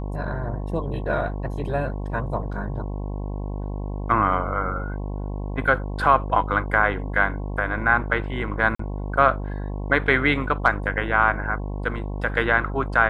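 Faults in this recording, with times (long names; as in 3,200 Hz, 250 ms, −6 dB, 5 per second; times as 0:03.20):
mains buzz 50 Hz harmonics 22 −29 dBFS
0:08.75–0:08.79: drop-out 44 ms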